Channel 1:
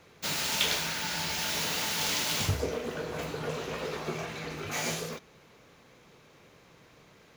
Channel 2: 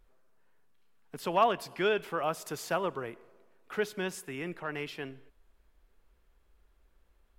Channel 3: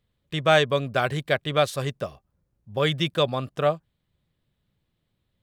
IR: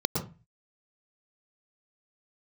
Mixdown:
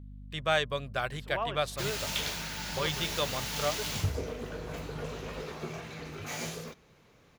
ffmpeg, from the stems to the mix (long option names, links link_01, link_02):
-filter_complex "[0:a]lowshelf=frequency=140:gain=8,adelay=1550,volume=-5.5dB[link_01];[1:a]highshelf=frequency=5200:gain=-8.5,volume=-9dB[link_02];[2:a]equalizer=frequency=260:width_type=o:width=2.2:gain=-8,aeval=exprs='val(0)+0.0126*(sin(2*PI*50*n/s)+sin(2*PI*2*50*n/s)/2+sin(2*PI*3*50*n/s)/3+sin(2*PI*4*50*n/s)/4+sin(2*PI*5*50*n/s)/5)':channel_layout=same,volume=-6.5dB,asplit=2[link_03][link_04];[link_04]apad=whole_len=325735[link_05];[link_02][link_05]sidechaingate=range=-33dB:threshold=-41dB:ratio=16:detection=peak[link_06];[link_01][link_06][link_03]amix=inputs=3:normalize=0"